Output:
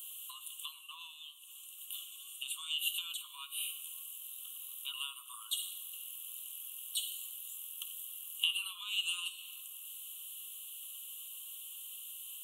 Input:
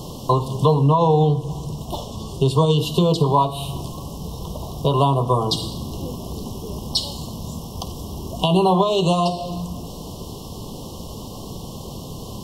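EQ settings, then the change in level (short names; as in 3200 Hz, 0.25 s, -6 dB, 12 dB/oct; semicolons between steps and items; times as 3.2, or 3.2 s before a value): steep high-pass 1500 Hz 72 dB/oct; Butterworth band-stop 5000 Hz, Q 0.69; +4.0 dB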